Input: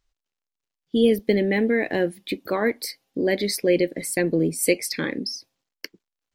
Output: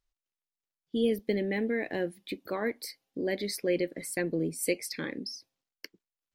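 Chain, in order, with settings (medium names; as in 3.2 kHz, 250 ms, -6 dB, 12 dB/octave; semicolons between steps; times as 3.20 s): 3.52–4.24 s: peaking EQ 1.3 kHz +7 dB 0.62 oct; trim -9 dB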